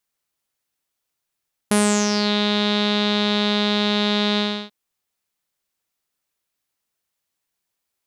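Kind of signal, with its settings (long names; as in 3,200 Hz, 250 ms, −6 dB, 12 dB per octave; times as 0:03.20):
subtractive voice saw G#3 12 dB per octave, low-pass 3,800 Hz, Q 7.5, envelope 1.5 octaves, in 0.60 s, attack 3.3 ms, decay 0.37 s, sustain −5 dB, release 0.32 s, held 2.67 s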